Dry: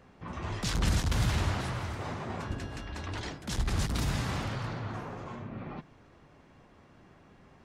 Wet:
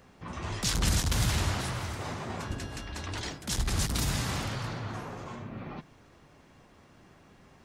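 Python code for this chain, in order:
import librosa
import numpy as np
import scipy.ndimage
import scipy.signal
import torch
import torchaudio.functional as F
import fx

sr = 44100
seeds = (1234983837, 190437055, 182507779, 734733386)

y = fx.high_shelf(x, sr, hz=4500.0, db=10.5)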